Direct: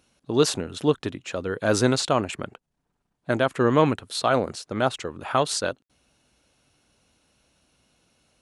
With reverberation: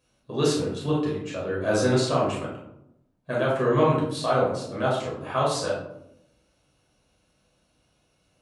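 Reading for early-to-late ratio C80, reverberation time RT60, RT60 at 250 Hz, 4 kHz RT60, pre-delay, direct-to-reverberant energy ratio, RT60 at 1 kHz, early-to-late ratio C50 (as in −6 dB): 6.5 dB, 0.80 s, 1.1 s, 0.40 s, 8 ms, −6.0 dB, 0.70 s, 2.5 dB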